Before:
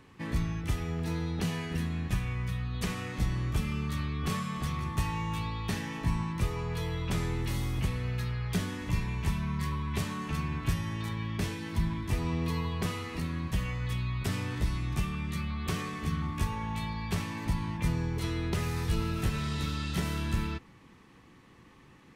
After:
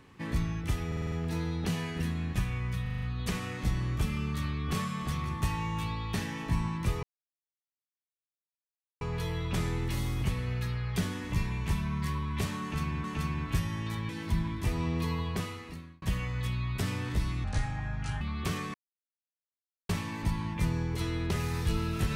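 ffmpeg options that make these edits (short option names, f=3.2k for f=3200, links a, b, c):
-filter_complex "[0:a]asplit=19[a][b][c][d][e][f][g][h][i][j][k][l][m][n][o][p][q][r][s];[a]atrim=end=0.922[t];[b]atrim=start=0.868:end=0.922[u];[c]atrim=start=0.868:end=0.922[v];[d]atrim=start=0.868:end=0.922[w];[e]atrim=start=0.868:end=0.922[x];[f]atrim=start=0.868:end=2.612[y];[g]atrim=start=2.568:end=2.612[z];[h]atrim=start=2.568:end=2.612[aa];[i]atrim=start=2.568:end=2.612[ab];[j]atrim=start=2.568:end=2.612[ac];[k]atrim=start=2.568:end=6.58,asetpts=PTS-STARTPTS,afade=t=out:st=4.008:d=0.004:c=hsin,apad=pad_dur=1.98[ad];[l]atrim=start=6.58:end=10.612,asetpts=PTS-STARTPTS,afade=t=in:d=0.004:c=hsin[ae];[m]atrim=start=10.178:end=11.232[af];[n]atrim=start=11.548:end=13.48,asetpts=PTS-STARTPTS,afade=t=out:st=1.172:d=0.76[ag];[o]atrim=start=13.48:end=14.904,asetpts=PTS-STARTPTS,afade=t=in:d=0.004:c=hsin[ah];[p]atrim=start=14.9:end=15.44,asetpts=PTS-STARTPTS,asetrate=30870,aresample=44100[ai];[q]atrim=start=15.436:end=15.97,asetpts=PTS-STARTPTS,afade=t=out:st=0.53:d=0.004:c=hsin[aj];[r]atrim=start=15.97:end=17.12,asetpts=PTS-STARTPTS,volume=0[ak];[s]atrim=start=17.12,asetpts=PTS-STARTPTS,afade=t=in:d=0.004:c=hsin[al];[t][u]acrossfade=d=0.004:c1=hsin:c2=hsin[am];[am][v]acrossfade=d=0.004:c1=hsin:c2=hsin[an];[an][w]acrossfade=d=0.004:c1=hsin:c2=hsin[ao];[ao][x]acrossfade=d=0.004:c1=hsin:c2=hsin[ap];[ap][y]acrossfade=d=0.004:c1=hsin:c2=hsin[aq];[aq][z]acrossfade=d=0.004:c1=hsin:c2=hsin[ar];[ar][aa]acrossfade=d=0.004:c1=hsin:c2=hsin[as];[as][ab]acrossfade=d=0.004:c1=hsin:c2=hsin[at];[at][ac]acrossfade=d=0.004:c1=hsin:c2=hsin[au];[ad][ae]concat=n=2:v=0:a=1[av];[au][av]acrossfade=d=0.004:c1=hsin:c2=hsin[aw];[aw][af]acrossfade=d=0.004:c1=hsin:c2=hsin[ax];[ag][ah]concat=n=2:v=0:a=1[ay];[ax][ay]acrossfade=d=0.004:c1=hsin:c2=hsin[az];[az][ai]acrossfade=d=0.004:c1=hsin:c2=hsin[ba];[aj][ak][al]concat=n=3:v=0:a=1[bb];[ba][bb]acrossfade=d=0.004:c1=hsin:c2=hsin"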